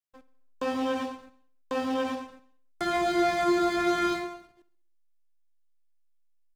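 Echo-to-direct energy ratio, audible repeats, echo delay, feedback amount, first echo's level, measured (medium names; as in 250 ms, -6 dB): -16.5 dB, 4, 66 ms, 55%, -18.0 dB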